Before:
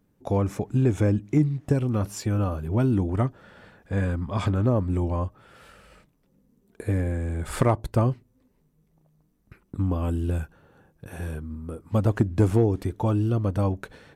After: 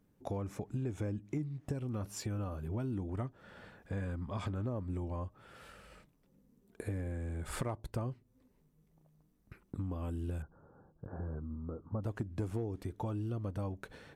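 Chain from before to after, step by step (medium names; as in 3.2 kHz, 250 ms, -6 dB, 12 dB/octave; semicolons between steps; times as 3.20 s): 10.42–12.03 s: steep low-pass 1.4 kHz 48 dB/octave; compression 3:1, threshold -34 dBFS, peak gain reduction 14 dB; trim -4 dB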